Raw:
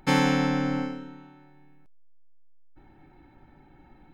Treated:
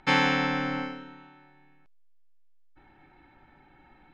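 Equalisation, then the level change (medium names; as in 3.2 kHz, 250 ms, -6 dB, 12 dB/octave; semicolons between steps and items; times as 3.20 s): low-pass 3.5 kHz 12 dB/octave; tilt shelf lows -6.5 dB, about 780 Hz; 0.0 dB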